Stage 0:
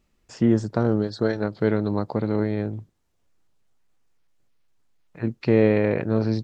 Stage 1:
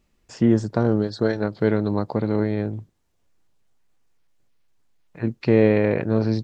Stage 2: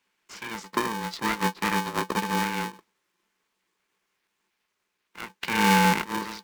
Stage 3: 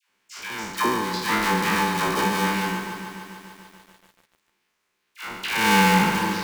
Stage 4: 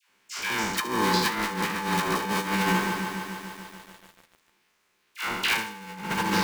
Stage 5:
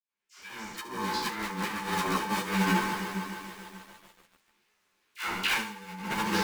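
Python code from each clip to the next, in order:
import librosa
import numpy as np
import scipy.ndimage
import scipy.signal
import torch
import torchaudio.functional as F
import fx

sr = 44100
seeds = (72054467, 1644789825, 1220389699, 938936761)

y1 = fx.notch(x, sr, hz=1300.0, q=26.0)
y1 = y1 * 10.0 ** (1.5 / 20.0)
y2 = fx.rider(y1, sr, range_db=10, speed_s=2.0)
y2 = scipy.signal.sosfilt(scipy.signal.cheby1(6, 9, 510.0, 'highpass', fs=sr, output='sos'), y2)
y2 = y2 * np.sign(np.sin(2.0 * np.pi * 340.0 * np.arange(len(y2)) / sr))
y2 = y2 * 10.0 ** (7.0 / 20.0)
y3 = fx.spec_trails(y2, sr, decay_s=1.09)
y3 = fx.dispersion(y3, sr, late='lows', ms=89.0, hz=910.0)
y3 = fx.echo_crushed(y3, sr, ms=146, feedback_pct=80, bits=8, wet_db=-11.5)
y3 = y3 * 10.0 ** (1.5 / 20.0)
y4 = fx.over_compress(y3, sr, threshold_db=-26.0, ratio=-0.5)
y4 = y4 + 10.0 ** (-14.5 / 20.0) * np.pad(y4, (int(72 * sr / 1000.0), 0))[:len(y4)]
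y5 = fx.fade_in_head(y4, sr, length_s=2.1)
y5 = fx.ensemble(y5, sr)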